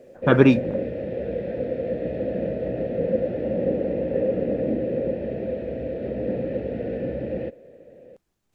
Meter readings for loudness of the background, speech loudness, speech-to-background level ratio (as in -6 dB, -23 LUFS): -27.0 LUFS, -18.5 LUFS, 8.5 dB